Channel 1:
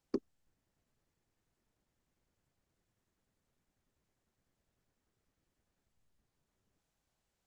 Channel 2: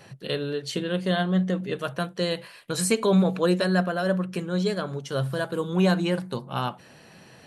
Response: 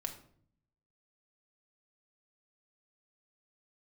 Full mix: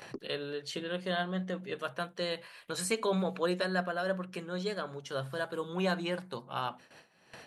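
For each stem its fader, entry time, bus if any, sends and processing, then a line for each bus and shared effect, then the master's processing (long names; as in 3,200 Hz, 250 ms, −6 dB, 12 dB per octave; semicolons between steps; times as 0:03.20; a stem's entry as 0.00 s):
−4.0 dB, 0.00 s, no send, automatic ducking −7 dB, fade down 0.30 s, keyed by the second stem
−3.5 dB, 0.00 s, no send, low-shelf EQ 370 Hz −11.5 dB; mains-hum notches 50/100/150/200/250 Hz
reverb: not used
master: noise gate with hold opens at −45 dBFS; high-shelf EQ 4,200 Hz −6.5 dB; upward compression, threshold −40 dBFS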